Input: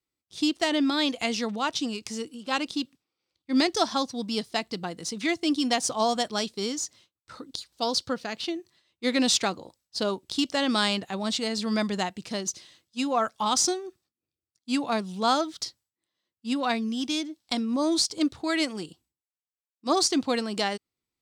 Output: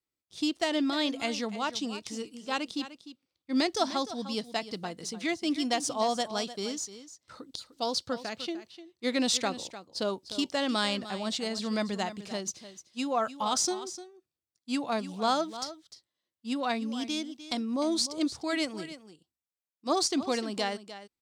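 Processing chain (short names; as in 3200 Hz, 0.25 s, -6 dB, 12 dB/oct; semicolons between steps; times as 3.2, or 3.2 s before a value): bell 600 Hz +2.5 dB 0.65 oct; on a send: echo 0.301 s -13.5 dB; on the sum: gain -4.5 dB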